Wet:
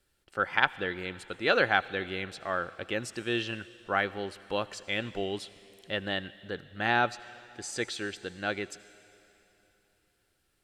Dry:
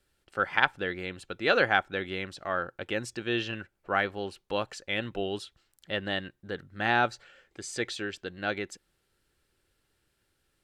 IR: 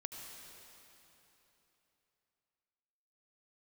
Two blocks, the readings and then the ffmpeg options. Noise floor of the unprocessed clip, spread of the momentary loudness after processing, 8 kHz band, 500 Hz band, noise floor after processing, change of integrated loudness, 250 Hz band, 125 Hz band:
-76 dBFS, 14 LU, +1.0 dB, -1.0 dB, -74 dBFS, -0.5 dB, -1.0 dB, -1.0 dB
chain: -filter_complex "[0:a]asplit=2[a][b];[1:a]atrim=start_sample=2205,highshelf=f=3.5k:g=11.5[c];[b][c]afir=irnorm=-1:irlink=0,volume=-13dB[d];[a][d]amix=inputs=2:normalize=0,volume=-2dB"

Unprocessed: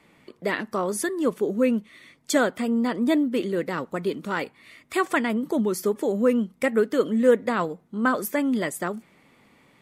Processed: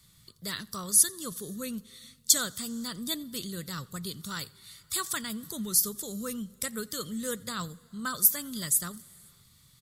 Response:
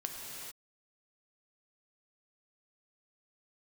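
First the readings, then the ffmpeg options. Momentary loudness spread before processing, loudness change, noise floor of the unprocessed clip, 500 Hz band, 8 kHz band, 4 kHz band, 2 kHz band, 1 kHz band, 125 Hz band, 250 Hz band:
8 LU, -4.0 dB, -60 dBFS, -19.0 dB, +11.0 dB, +4.5 dB, -11.0 dB, -12.0 dB, -5.0 dB, -13.5 dB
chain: -filter_complex "[0:a]firequalizer=gain_entry='entry(110,0);entry(260,-25);entry(810,-28);entry(1200,-15);entry(2400,-22);entry(3700,0);entry(13000,7)':delay=0.05:min_phase=1,asplit=2[a][b];[1:a]atrim=start_sample=2205,adelay=87[c];[b][c]afir=irnorm=-1:irlink=0,volume=-23dB[d];[a][d]amix=inputs=2:normalize=0,volume=7dB"

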